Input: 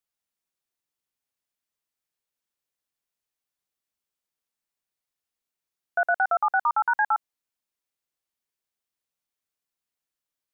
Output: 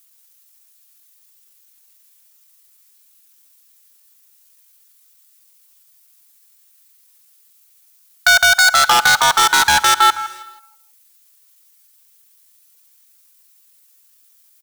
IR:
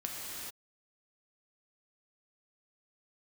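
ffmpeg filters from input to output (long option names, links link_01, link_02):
-filter_complex "[0:a]aeval=exprs='if(lt(val(0),0),0.708*val(0),val(0))':channel_layout=same,highpass=frequency=830:width=0.5412,highpass=frequency=830:width=1.3066,aecho=1:1:4.6:0.33,atempo=0.72,aecho=1:1:161|322|483:0.473|0.0852|0.0153,asoftclip=type=hard:threshold=-28dB,asplit=2[link_01][link_02];[1:a]atrim=start_sample=2205,adelay=47[link_03];[link_02][link_03]afir=irnorm=-1:irlink=0,volume=-24dB[link_04];[link_01][link_04]amix=inputs=2:normalize=0,crystalizer=i=4:c=0,alimiter=level_in=19.5dB:limit=-1dB:release=50:level=0:latency=1,volume=-1dB"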